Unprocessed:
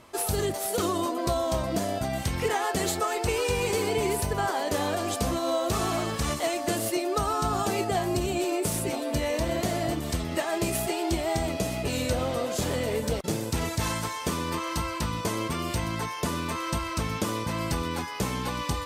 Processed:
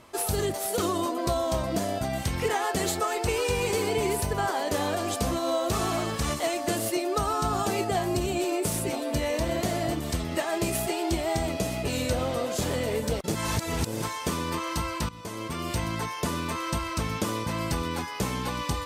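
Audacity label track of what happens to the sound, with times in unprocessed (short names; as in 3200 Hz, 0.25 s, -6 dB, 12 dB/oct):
13.350000	14.020000	reverse
15.090000	15.760000	fade in, from -16.5 dB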